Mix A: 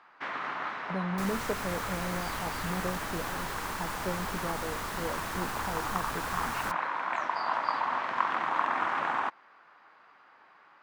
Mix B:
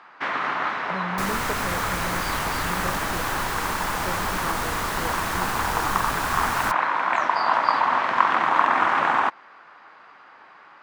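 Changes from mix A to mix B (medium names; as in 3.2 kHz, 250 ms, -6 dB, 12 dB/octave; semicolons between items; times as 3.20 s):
first sound +9.5 dB; second sound +9.0 dB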